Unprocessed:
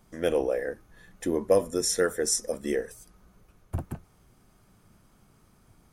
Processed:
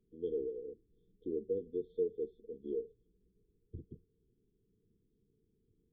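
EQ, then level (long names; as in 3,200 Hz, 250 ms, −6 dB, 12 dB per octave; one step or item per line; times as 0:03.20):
formant resonators in series e
linear-phase brick-wall band-stop 470–3,100 Hz
+4.0 dB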